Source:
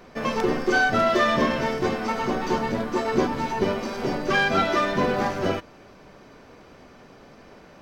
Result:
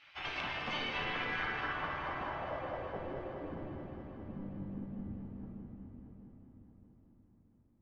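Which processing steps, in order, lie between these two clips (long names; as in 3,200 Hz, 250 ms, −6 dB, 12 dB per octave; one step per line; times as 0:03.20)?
gate on every frequency bin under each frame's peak −15 dB weak
downward compressor, threshold −33 dBFS, peak gain reduction 8 dB
low-pass filter sweep 3,000 Hz → 220 Hz, 0:00.80–0:03.85
on a send: echo machine with several playback heads 209 ms, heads first and third, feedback 57%, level −11 dB
on the sum: rectangular room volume 190 cubic metres, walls hard, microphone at 0.42 metres
level −6 dB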